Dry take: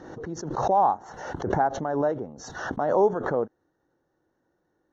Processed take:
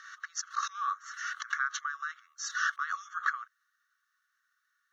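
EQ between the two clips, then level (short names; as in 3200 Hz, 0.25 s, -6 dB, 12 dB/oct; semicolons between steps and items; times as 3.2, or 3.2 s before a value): brick-wall FIR high-pass 1100 Hz; +6.0 dB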